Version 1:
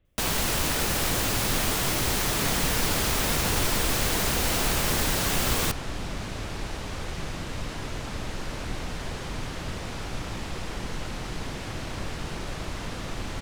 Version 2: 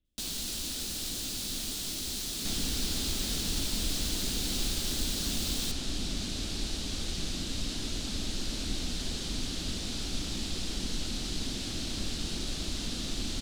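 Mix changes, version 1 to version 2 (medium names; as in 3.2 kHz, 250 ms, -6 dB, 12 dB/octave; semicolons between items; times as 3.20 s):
speech -11.0 dB; first sound -11.5 dB; master: add ten-band graphic EQ 125 Hz -9 dB, 250 Hz +6 dB, 500 Hz -7 dB, 1 kHz -11 dB, 2 kHz -8 dB, 4 kHz +9 dB, 8 kHz +4 dB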